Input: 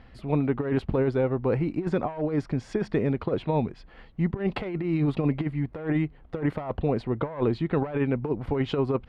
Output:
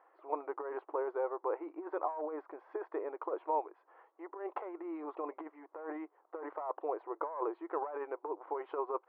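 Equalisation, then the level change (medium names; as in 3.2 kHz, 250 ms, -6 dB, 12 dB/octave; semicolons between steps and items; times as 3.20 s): brick-wall FIR high-pass 300 Hz; four-pole ladder low-pass 1.2 kHz, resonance 50%; tilt EQ +3.5 dB/octave; +2.0 dB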